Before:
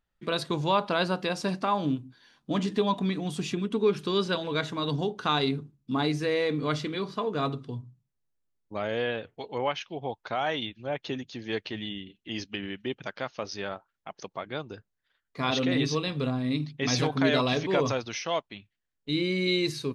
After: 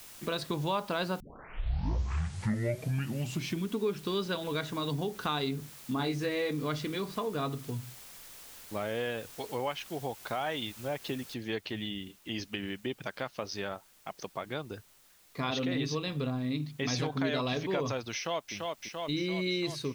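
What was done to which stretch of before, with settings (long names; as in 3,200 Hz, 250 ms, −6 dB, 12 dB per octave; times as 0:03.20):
0:01.20: tape start 2.52 s
0:05.97–0:06.51: double-tracking delay 22 ms −5 dB
0:11.34: noise floor change −50 dB −62 dB
0:18.14–0:18.54: delay throw 340 ms, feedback 75%, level −5.5 dB
whole clip: low-shelf EQ 62 Hz +7 dB; downward compressor 2 to 1, threshold −33 dBFS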